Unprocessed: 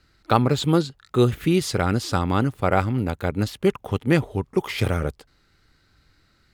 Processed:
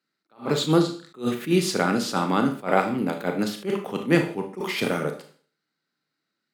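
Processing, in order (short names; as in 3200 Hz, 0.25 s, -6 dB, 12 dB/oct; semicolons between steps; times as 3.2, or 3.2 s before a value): steep high-pass 160 Hz 36 dB/oct; gate -54 dBFS, range -18 dB; Schroeder reverb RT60 0.44 s, combs from 26 ms, DRR 5 dB; attack slew limiter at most 240 dB/s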